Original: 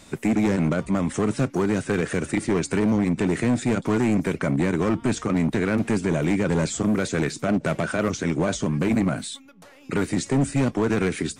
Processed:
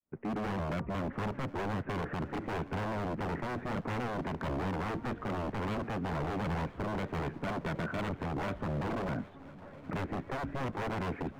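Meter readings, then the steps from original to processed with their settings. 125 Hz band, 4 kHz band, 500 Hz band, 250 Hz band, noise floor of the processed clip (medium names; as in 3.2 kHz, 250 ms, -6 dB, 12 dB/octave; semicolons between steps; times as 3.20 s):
-11.0 dB, -12.0 dB, -12.5 dB, -15.0 dB, -50 dBFS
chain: fade-in on the opening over 0.52 s; gate with hold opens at -44 dBFS; in parallel at +2 dB: peak limiter -26.5 dBFS, peak gain reduction 10.5 dB; on the sum: Gaussian low-pass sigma 5.4 samples; wavefolder -20 dBFS; on a send: shuffle delay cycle 1024 ms, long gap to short 3:1, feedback 65%, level -21.5 dB; on the sum: trim -8.5 dB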